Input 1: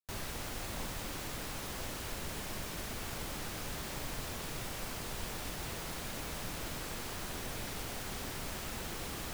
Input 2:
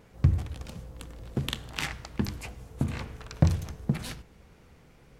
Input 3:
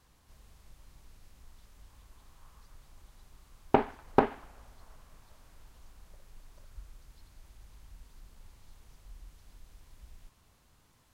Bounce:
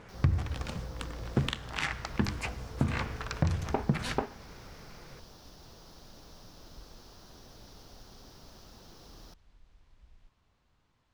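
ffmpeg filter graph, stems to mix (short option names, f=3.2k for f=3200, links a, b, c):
-filter_complex "[0:a]equalizer=f=2.2k:t=o:w=1:g=-11.5,highshelf=f=6.6k:t=q:w=3:g=-7,volume=-11dB[a];[1:a]lowpass=8.4k,equalizer=f=1.4k:t=o:w=1.8:g=6.5,volume=3dB[b];[2:a]lowpass=4.4k,volume=-6dB[c];[a][b][c]amix=inputs=3:normalize=0,alimiter=limit=-14dB:level=0:latency=1:release=321"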